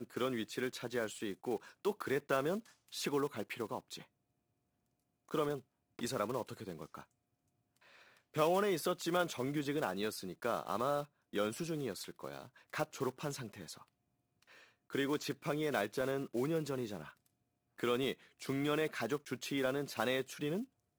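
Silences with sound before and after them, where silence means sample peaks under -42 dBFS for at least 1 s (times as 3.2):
4.01–5.31
7–8.35
13.77–14.93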